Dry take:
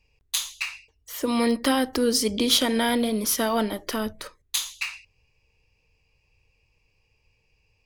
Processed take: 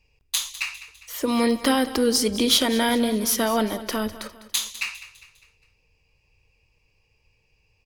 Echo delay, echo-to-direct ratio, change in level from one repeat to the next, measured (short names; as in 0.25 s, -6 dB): 0.202 s, -14.5 dB, -7.0 dB